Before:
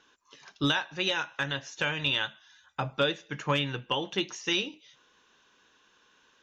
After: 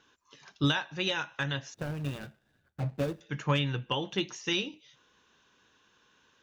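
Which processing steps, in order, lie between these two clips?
1.74–3.21 s: median filter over 41 samples; peaking EQ 97 Hz +8.5 dB 2.1 oct; trim -2.5 dB

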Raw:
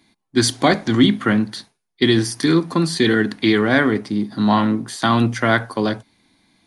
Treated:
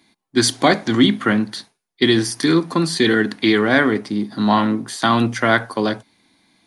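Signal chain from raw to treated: bass shelf 120 Hz -9.5 dB; trim +1.5 dB

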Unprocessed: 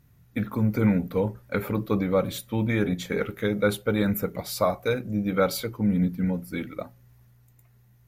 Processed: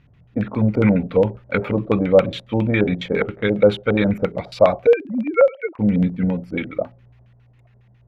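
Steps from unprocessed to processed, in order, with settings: 4.87–5.79 s: formants replaced by sine waves; LFO low-pass square 7.3 Hz 650–2800 Hz; trim +5 dB

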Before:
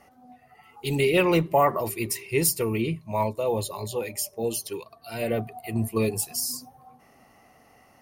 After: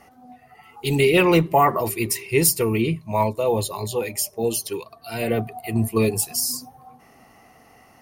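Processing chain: band-stop 570 Hz, Q 12; trim +5 dB

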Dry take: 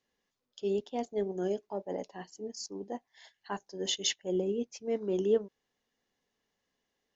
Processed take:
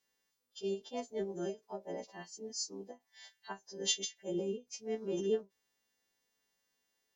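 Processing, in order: partials quantised in pitch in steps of 2 st; endings held to a fixed fall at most 310 dB/s; trim -4.5 dB

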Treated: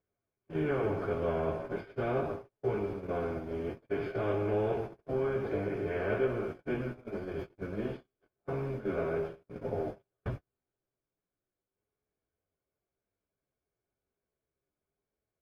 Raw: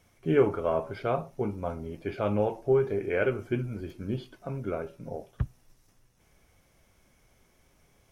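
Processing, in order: spectral levelling over time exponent 0.4; on a send: reverse echo 1010 ms -21.5 dB; on the sum: plain phase-vocoder stretch 1.9×; gate -28 dBFS, range -44 dB; trim -8 dB

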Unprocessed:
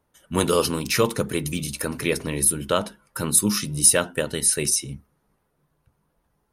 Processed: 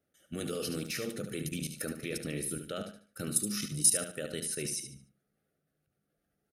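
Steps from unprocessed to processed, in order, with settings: high-pass 150 Hz 6 dB/octave; peaking EQ 190 Hz +2.5 dB 1.9 oct; level held to a coarse grid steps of 15 dB; Butterworth band-stop 970 Hz, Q 2; feedback delay 73 ms, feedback 30%, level -8 dB; trim -6 dB

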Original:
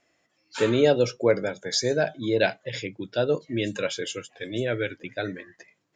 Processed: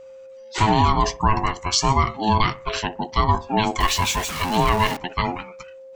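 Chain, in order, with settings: 3.80–4.97 s: jump at every zero crossing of -31 dBFS; ring modulator 540 Hz; whistle 530 Hz -50 dBFS; on a send: bucket-brigade echo 62 ms, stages 1024, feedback 33%, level -21 dB; on the sum: loudness maximiser +15.5 dB; trim -5.5 dB

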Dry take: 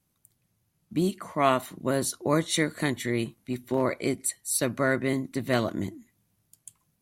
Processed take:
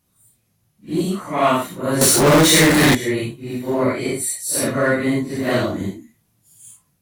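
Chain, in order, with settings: phase randomisation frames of 200 ms; 2.01–2.95 s: power-law waveshaper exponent 0.35; in parallel at -9 dB: saturation -25 dBFS, distortion -9 dB; on the sum: trim +5 dB

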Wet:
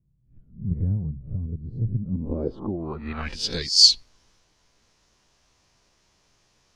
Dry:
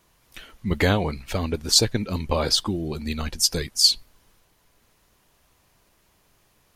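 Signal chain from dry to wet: reverse spectral sustain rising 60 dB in 0.37 s; low-pass sweep 140 Hz -> 5.8 kHz, 1.98–3.72 s; trim -4.5 dB

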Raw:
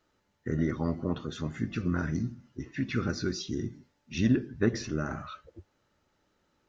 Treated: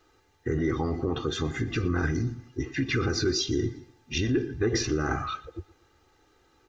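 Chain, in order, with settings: peak limiter -25 dBFS, peak gain reduction 11 dB; comb 2.5 ms, depth 73%; feedback delay 119 ms, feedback 39%, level -21.5 dB; trim +7.5 dB

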